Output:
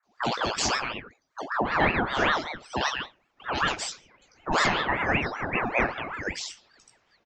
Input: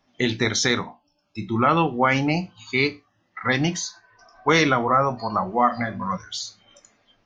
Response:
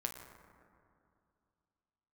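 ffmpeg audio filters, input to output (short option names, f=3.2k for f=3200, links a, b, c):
-filter_complex "[0:a]acrossover=split=550|2200[a][b][c];[c]adelay=30[d];[b]adelay=170[e];[a][e][d]amix=inputs=3:normalize=0,flanger=delay=16:depth=4.5:speed=0.71,aeval=exprs='val(0)*sin(2*PI*1000*n/s+1000*0.55/5.2*sin(2*PI*5.2*n/s))':c=same,volume=2dB"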